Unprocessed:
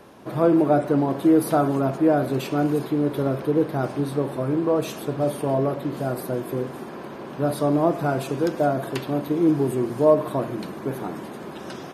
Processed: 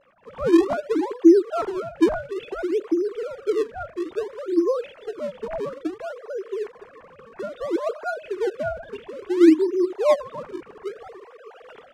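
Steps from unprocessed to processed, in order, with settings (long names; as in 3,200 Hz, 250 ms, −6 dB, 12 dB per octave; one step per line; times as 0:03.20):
three sine waves on the formant tracks
parametric band 600 Hz −6.5 dB 0.7 octaves
in parallel at −10 dB: sample-and-hold swept by an LFO 37×, swing 160% 0.59 Hz
on the sum: high-frequency loss of the air 53 metres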